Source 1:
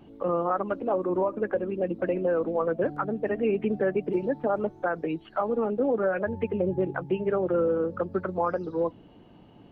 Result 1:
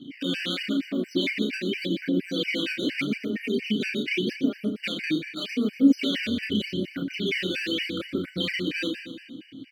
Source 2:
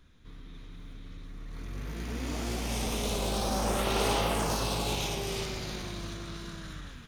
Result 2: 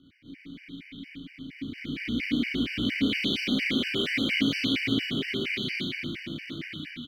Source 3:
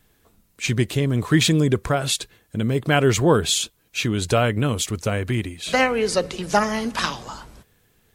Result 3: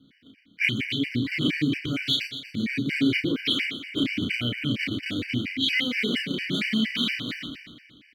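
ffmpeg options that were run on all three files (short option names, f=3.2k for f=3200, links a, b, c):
-filter_complex "[0:a]lowpass=11k,acrusher=samples=12:mix=1:aa=0.000001:lfo=1:lforange=19.2:lforate=0.83,equalizer=f=125:t=o:w=1:g=8,equalizer=f=2k:t=o:w=1:g=6,equalizer=f=4k:t=o:w=1:g=9,equalizer=f=8k:t=o:w=1:g=-10,acompressor=threshold=-22dB:ratio=4,apsyclip=23dB,asplit=3[a][b][c];[a]bandpass=f=270:t=q:w=8,volume=0dB[d];[b]bandpass=f=2.29k:t=q:w=8,volume=-6dB[e];[c]bandpass=f=3.01k:t=q:w=8,volume=-9dB[f];[d][e][f]amix=inputs=3:normalize=0,highshelf=f=5.9k:g=11.5,asplit=2[g][h];[h]adelay=33,volume=-3.5dB[i];[g][i]amix=inputs=2:normalize=0,aecho=1:1:120|240|360|480|600|720|840:0.355|0.206|0.119|0.0692|0.0402|0.0233|0.0135,afftfilt=real='re*gt(sin(2*PI*4.3*pts/sr)*(1-2*mod(floor(b*sr/1024/1500),2)),0)':imag='im*gt(sin(2*PI*4.3*pts/sr)*(1-2*mod(floor(b*sr/1024/1500),2)),0)':win_size=1024:overlap=0.75,volume=-7dB"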